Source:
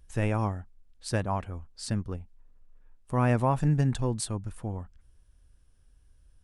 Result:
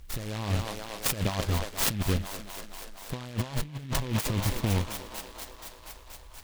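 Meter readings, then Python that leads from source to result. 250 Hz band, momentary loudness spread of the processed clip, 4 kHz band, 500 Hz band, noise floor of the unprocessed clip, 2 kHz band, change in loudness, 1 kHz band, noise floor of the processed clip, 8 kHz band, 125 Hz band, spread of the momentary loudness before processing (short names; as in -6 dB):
-2.5 dB, 16 LU, +10.0 dB, -3.5 dB, -61 dBFS, +3.0 dB, -1.5 dB, -4.0 dB, -49 dBFS, +7.0 dB, -2.0 dB, 16 LU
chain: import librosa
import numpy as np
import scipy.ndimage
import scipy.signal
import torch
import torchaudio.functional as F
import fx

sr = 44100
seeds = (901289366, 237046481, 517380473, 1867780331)

p1 = fx.schmitt(x, sr, flips_db=-35.0)
p2 = x + (p1 * 10.0 ** (-11.5 / 20.0))
p3 = scipy.signal.sosfilt(scipy.signal.butter(2, 8600.0, 'lowpass', fs=sr, output='sos'), p2)
p4 = fx.high_shelf(p3, sr, hz=3500.0, db=9.5)
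p5 = fx.notch(p4, sr, hz=720.0, q=23.0)
p6 = p5 + fx.echo_thinned(p5, sr, ms=239, feedback_pct=81, hz=280.0, wet_db=-15, dry=0)
p7 = fx.over_compress(p6, sr, threshold_db=-31.0, ratio=-0.5)
p8 = fx.noise_mod_delay(p7, sr, seeds[0], noise_hz=2400.0, depth_ms=0.12)
y = p8 * 10.0 ** (3.0 / 20.0)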